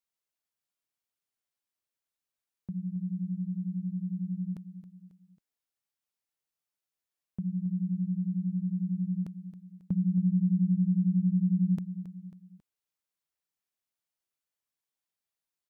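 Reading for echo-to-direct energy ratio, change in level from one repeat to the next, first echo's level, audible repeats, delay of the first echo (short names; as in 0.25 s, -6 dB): -12.0 dB, -6.0 dB, -13.0 dB, 3, 0.272 s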